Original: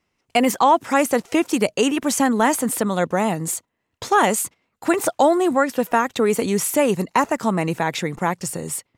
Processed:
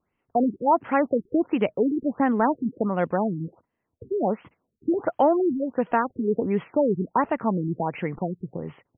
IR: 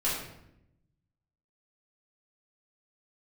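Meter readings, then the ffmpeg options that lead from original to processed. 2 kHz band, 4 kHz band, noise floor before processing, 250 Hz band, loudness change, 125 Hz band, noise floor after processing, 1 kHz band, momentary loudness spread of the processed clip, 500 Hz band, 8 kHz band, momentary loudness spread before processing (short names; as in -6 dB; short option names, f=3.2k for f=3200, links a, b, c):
-10.0 dB, under -20 dB, -74 dBFS, -3.0 dB, -4.5 dB, -3.0 dB, -79 dBFS, -5.5 dB, 10 LU, -4.0 dB, under -40 dB, 8 LU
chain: -af "highshelf=f=2.4k:g=-6.5,afftfilt=real='re*lt(b*sr/1024,410*pow(3400/410,0.5+0.5*sin(2*PI*1.4*pts/sr)))':imag='im*lt(b*sr/1024,410*pow(3400/410,0.5+0.5*sin(2*PI*1.4*pts/sr)))':win_size=1024:overlap=0.75,volume=-3dB"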